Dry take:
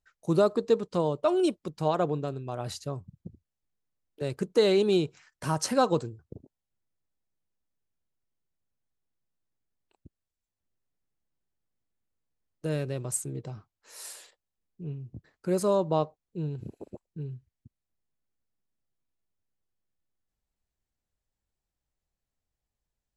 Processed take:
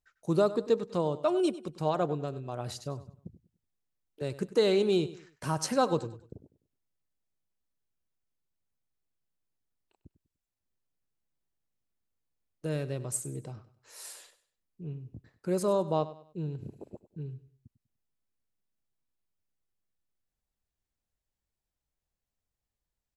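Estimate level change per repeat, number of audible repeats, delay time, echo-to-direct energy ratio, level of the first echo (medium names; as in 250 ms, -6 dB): -9.5 dB, 3, 98 ms, -15.5 dB, -16.0 dB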